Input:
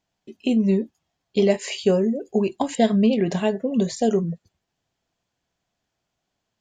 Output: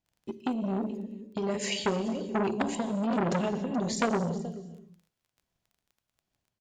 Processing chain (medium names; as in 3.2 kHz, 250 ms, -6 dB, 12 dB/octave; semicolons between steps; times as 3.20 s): gate -41 dBFS, range -6 dB; bass shelf 210 Hz +9.5 dB; de-hum 72.14 Hz, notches 8; peak limiter -12.5 dBFS, peak gain reduction 9 dB; transient shaper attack +8 dB, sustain +4 dB; compression 3:1, threshold -14 dBFS, peak gain reduction 4 dB; tremolo triangle 1.3 Hz, depth 75%; crackle 16 per s -46 dBFS; delay 428 ms -18 dB; gated-style reverb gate 320 ms flat, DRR 9 dB; transformer saturation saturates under 1.8 kHz; trim -2.5 dB